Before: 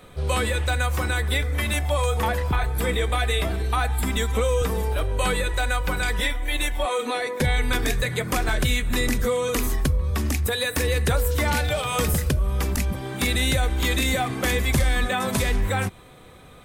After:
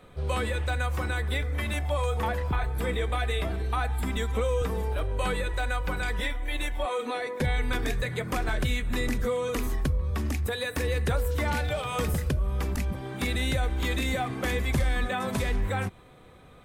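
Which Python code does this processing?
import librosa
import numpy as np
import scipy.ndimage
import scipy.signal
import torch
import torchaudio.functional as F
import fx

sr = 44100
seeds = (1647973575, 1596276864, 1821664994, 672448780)

y = fx.high_shelf(x, sr, hz=3800.0, db=-8.0)
y = y * 10.0 ** (-4.5 / 20.0)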